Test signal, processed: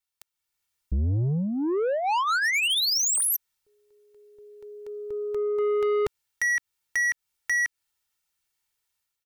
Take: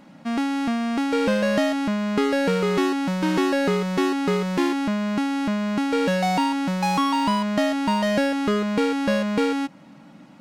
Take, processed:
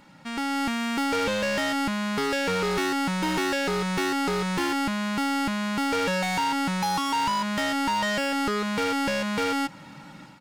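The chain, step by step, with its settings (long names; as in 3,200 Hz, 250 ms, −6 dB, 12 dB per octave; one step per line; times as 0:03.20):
parametric band 440 Hz −9.5 dB 1.5 octaves
downward compressor 12 to 1, threshold −25 dBFS
comb filter 2.2 ms, depth 54%
automatic gain control gain up to 8 dB
soft clipping −22 dBFS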